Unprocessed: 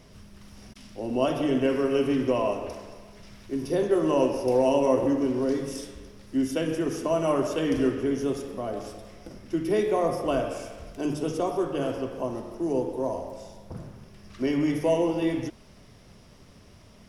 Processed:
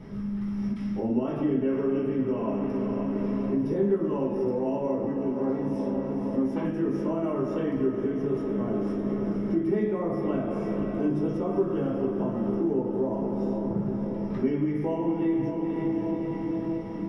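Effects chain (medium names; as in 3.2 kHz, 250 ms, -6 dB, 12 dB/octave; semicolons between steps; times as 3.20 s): tilt EQ -2 dB/octave; 5.31–6.65 s: valve stage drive 20 dB, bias 0.75; echo that smears into a reverb 518 ms, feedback 58%, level -10 dB; compression 5:1, threshold -33 dBFS, peak gain reduction 16.5 dB; peaking EQ 190 Hz +13.5 dB 0.28 oct; reverberation RT60 0.35 s, pre-delay 3 ms, DRR -3.5 dB; trim -7 dB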